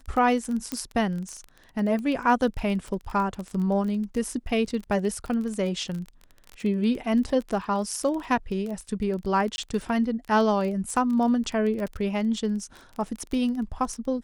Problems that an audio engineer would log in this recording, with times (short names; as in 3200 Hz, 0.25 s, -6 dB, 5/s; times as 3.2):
crackle 20/s -30 dBFS
0.72 pop -13 dBFS
9.56–9.58 gap 21 ms